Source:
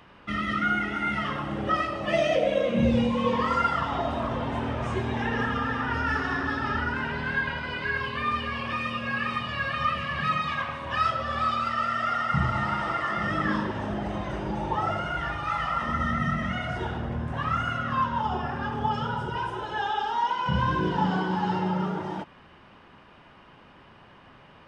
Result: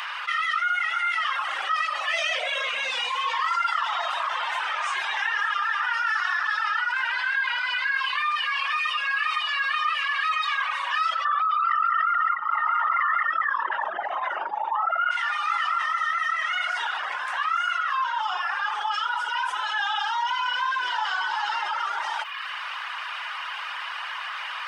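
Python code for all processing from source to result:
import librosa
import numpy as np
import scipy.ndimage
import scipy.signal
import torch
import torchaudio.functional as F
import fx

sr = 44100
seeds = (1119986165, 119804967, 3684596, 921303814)

y = fx.chain(x, sr, fx.envelope_sharpen(power=2.0),
    fx.env_flatten(amount_pct=100), at=(11.25, 15.11))
y = scipy.signal.sosfilt(scipy.signal.butter(4, 1100.0, 'highpass', fs=sr, output='sos'), y)
y = fx.dereverb_blind(y, sr, rt60_s=0.58)
y = fx.env_flatten(y, sr, amount_pct=70)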